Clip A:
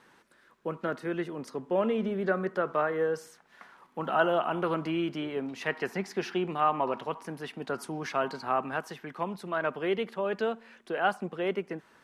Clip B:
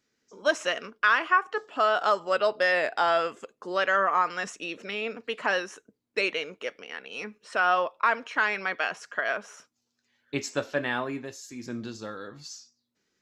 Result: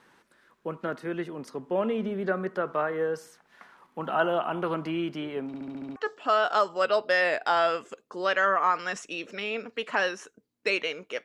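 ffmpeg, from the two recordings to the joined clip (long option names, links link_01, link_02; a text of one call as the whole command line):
ffmpeg -i cue0.wav -i cue1.wav -filter_complex "[0:a]apad=whole_dur=11.24,atrim=end=11.24,asplit=7[link_01][link_02][link_03][link_04][link_05][link_06][link_07];[link_01]atrim=end=5.542[link_08];[link_02]atrim=start=5.468:end=5.542[link_09];[link_03]atrim=start=5.468:end=5.542[link_10];[link_04]atrim=start=5.468:end=5.542[link_11];[link_05]atrim=start=5.468:end=5.542[link_12];[link_06]atrim=start=5.468:end=5.542[link_13];[link_07]atrim=start=5.468:end=5.542[link_14];[1:a]atrim=start=1.468:end=6.75[link_15];[link_08][link_09]acrossfade=duration=0.004:curve1=hsin:curve2=hsin[link_16];[link_16][link_10]acrossfade=duration=0.004:curve1=hsin:curve2=hsin[link_17];[link_17][link_11]acrossfade=duration=0.004:curve1=hsin:curve2=hsin[link_18];[link_18][link_12]acrossfade=duration=0.004:curve1=hsin:curve2=hsin[link_19];[link_19][link_13]acrossfade=duration=0.004:curve1=hsin:curve2=hsin[link_20];[link_20][link_14]acrossfade=duration=0.004:curve1=hsin:curve2=hsin[link_21];[link_21][link_15]acrossfade=duration=0.004:curve1=hsin:curve2=hsin" out.wav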